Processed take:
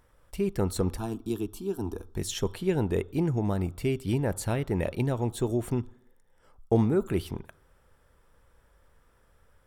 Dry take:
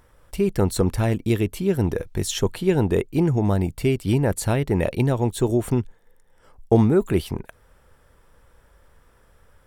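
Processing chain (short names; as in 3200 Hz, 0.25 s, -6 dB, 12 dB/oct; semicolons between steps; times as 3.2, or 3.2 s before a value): 0.97–2.16 fixed phaser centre 540 Hz, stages 6; on a send: reverb RT60 0.70 s, pre-delay 3 ms, DRR 16.5 dB; on the sum: gain -7 dB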